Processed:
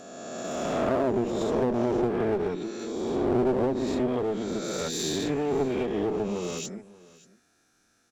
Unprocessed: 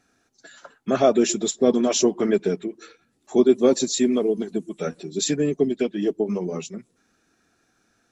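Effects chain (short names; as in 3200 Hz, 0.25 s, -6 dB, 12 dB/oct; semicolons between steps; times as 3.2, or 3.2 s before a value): spectral swells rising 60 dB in 2.09 s; treble ducked by the level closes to 480 Hz, closed at -9.5 dBFS; high shelf 4200 Hz +8 dB; one-sided clip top -22 dBFS; on a send: echo 0.582 s -21 dB; on the sum: gain -6.5 dB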